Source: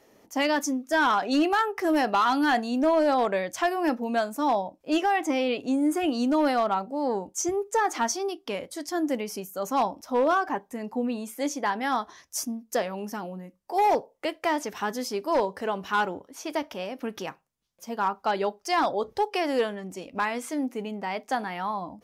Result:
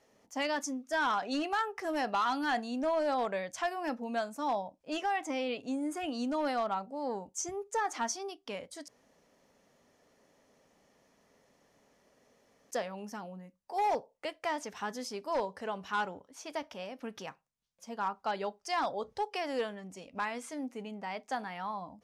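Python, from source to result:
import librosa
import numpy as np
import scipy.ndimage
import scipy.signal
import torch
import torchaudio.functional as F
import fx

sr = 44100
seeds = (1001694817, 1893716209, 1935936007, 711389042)

y = fx.edit(x, sr, fx.room_tone_fill(start_s=8.88, length_s=3.83), tone=tone)
y = scipy.signal.sosfilt(scipy.signal.cheby1(2, 1.0, 8700.0, 'lowpass', fs=sr, output='sos'), y)
y = fx.peak_eq(y, sr, hz=340.0, db=-8.0, octaves=0.39)
y = y * 10.0 ** (-6.5 / 20.0)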